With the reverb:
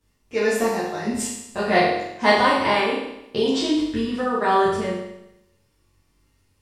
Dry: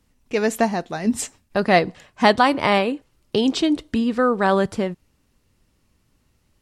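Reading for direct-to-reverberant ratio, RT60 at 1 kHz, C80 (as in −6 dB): −10.0 dB, 0.85 s, 4.5 dB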